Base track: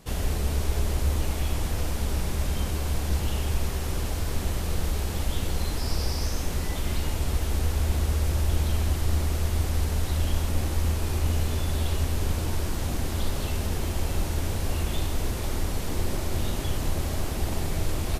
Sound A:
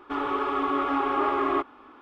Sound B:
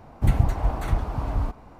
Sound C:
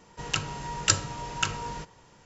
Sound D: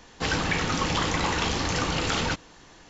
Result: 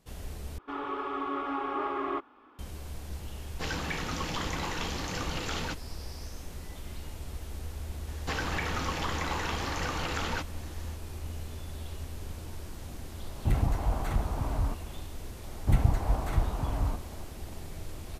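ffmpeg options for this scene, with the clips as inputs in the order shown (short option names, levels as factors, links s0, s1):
-filter_complex "[4:a]asplit=2[s0][s1];[2:a]asplit=2[s2][s3];[0:a]volume=0.211[s4];[s1]acrossover=split=260|750|2100[s5][s6][s7][s8];[s5]acompressor=threshold=0.00891:ratio=3[s9];[s6]acompressor=threshold=0.00891:ratio=3[s10];[s7]acompressor=threshold=0.02:ratio=3[s11];[s8]acompressor=threshold=0.00794:ratio=3[s12];[s9][s10][s11][s12]amix=inputs=4:normalize=0[s13];[s2]asoftclip=type=tanh:threshold=0.2[s14];[s4]asplit=2[s15][s16];[s15]atrim=end=0.584[s17];[1:a]atrim=end=2.01,asetpts=PTS-STARTPTS,volume=0.422[s18];[s16]atrim=start=2.586[s19];[s0]atrim=end=2.89,asetpts=PTS-STARTPTS,volume=0.376,afade=t=in:d=0.004:c=hsin,afade=t=out:st=2.886:d=0.004:c=hsin,adelay=3390[s20];[s13]atrim=end=2.89,asetpts=PTS-STARTPTS,volume=0.891,afade=t=in:d=0.004:c=hsin,afade=t=out:st=2.886:d=0.004:c=hsin,adelay=8070[s21];[s14]atrim=end=1.79,asetpts=PTS-STARTPTS,volume=0.668,afade=t=in:d=0.004:c=hsin,afade=t=out:st=1.786:d=0.004:c=hsin,adelay=13230[s22];[s3]atrim=end=1.79,asetpts=PTS-STARTPTS,volume=0.631,afade=t=in:d=0.004:c=hsin,afade=t=out:st=1.786:d=0.004:c=hsin,adelay=15450[s23];[s17][s18]acrossfade=d=0.004:c1=hsin:c2=hsin[s24];[s24][s19]acrossfade=d=0.004:c1=hsin:c2=hsin[s25];[s25][s20][s21][s22][s23]amix=inputs=5:normalize=0"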